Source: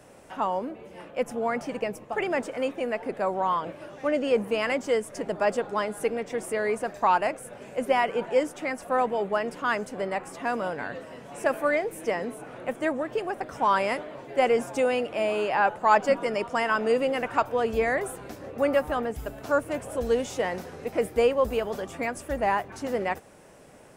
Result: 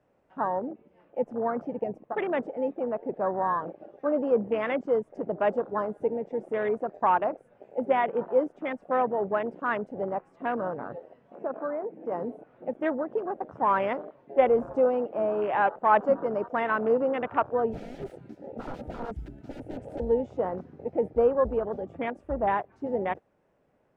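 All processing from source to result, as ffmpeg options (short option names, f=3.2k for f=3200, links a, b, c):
-filter_complex "[0:a]asettb=1/sr,asplit=3[a][b][c];[a]atrim=end=11.354[d];[b]atrim=start=11.35:end=12.12,asetpts=PTS-STARTPTS,afade=t=in:d=0.004:c=qsin,afade=t=out:st=0.766:d=0.004:c=qsin,highpass=120,lowpass=2.8k,acompressor=threshold=-30dB:ratio=2:attack=3.2:release=140:knee=1:detection=peak[e];[c]atrim=start=12.116[f];[d][e]acrossfade=d=0.004:c1=hsin:c2=qsin[g];[g][f]acrossfade=d=0.004:c1=qsin:c2=hsin,asettb=1/sr,asplit=3[h][i][j];[h]atrim=end=14.354[k];[i]atrim=start=14.35:end=14.89,asetpts=PTS-STARTPTS,afade=t=in:d=0.004:c=qsin,afade=t=out:st=0.536:d=0.004:c=qsin,equalizer=f=540:w=7.7:g=4,aeval=exprs='val(0)+0.00282*(sin(2*PI*50*n/s)+sin(2*PI*2*50*n/s)/2+sin(2*PI*3*50*n/s)/3+sin(2*PI*4*50*n/s)/4+sin(2*PI*5*50*n/s)/5)':c=same[l];[j]atrim=start=14.886[m];[k][l]acrossfade=d=0.004:c1=hsin:c2=qsin[n];[n][m]acrossfade=d=0.004:c1=qsin:c2=hsin,asettb=1/sr,asplit=3[o][p][q];[o]atrim=end=17.714[r];[p]atrim=start=17.71:end=20,asetpts=PTS-STARTPTS,afade=t=in:d=0.004:c=qsin,afade=t=out:st=2.286:d=0.004:c=qsin,highshelf=f=3.1k:g=11,aeval=exprs='(mod(17.8*val(0)+1,2)-1)/17.8':c=same,asuperstop=centerf=1100:order=12:qfactor=5.9[s];[q]atrim=start=19.996[t];[r][s]acrossfade=d=0.004:c1=hsin:c2=qsin[u];[u][t]acrossfade=d=0.004:c1=qsin:c2=hsin,afwtdn=0.0316,lowpass=f=3.3k:p=1,aemphasis=mode=reproduction:type=75kf"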